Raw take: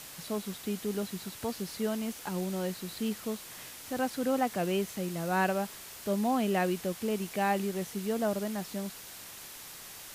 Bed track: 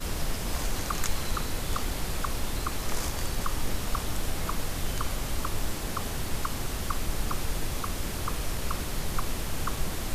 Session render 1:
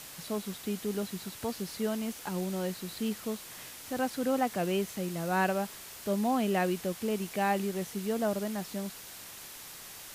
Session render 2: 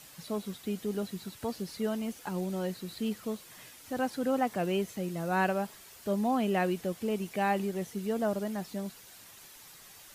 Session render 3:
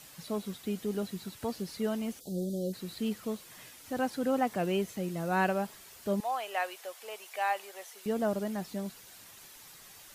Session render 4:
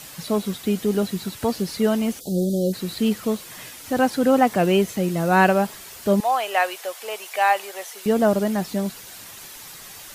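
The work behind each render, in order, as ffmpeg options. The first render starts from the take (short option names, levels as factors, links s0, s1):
-af anull
-af "afftdn=nr=8:nf=-47"
-filter_complex "[0:a]asplit=3[s0][s1][s2];[s0]afade=t=out:st=2.19:d=0.02[s3];[s1]asuperstop=centerf=1500:order=12:qfactor=0.51,afade=t=in:st=2.19:d=0.02,afade=t=out:st=2.72:d=0.02[s4];[s2]afade=t=in:st=2.72:d=0.02[s5];[s3][s4][s5]amix=inputs=3:normalize=0,asettb=1/sr,asplit=3[s6][s7][s8];[s6]atrim=end=6.204[s9];[s7]atrim=start=6.2:end=8.06,asetpts=PTS-STARTPTS,afade=t=in:d=0.004:c=qsin,afade=t=out:st=1.856:d=0.004:c=qsin,highpass=f=620:w=0.5412,highpass=f=620:w=1.3066[s10];[s8]atrim=start=8.056[s11];[s9][s10]acrossfade=d=0.004:c1=hsin:c2=qsin[s12];[s12][s11]acrossfade=d=0.004:c1=qsin:c2=hsin"
-af "volume=3.98"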